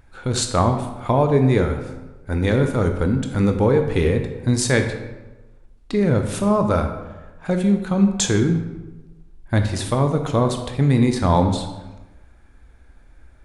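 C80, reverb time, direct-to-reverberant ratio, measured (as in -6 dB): 9.5 dB, 1.1 s, 5.5 dB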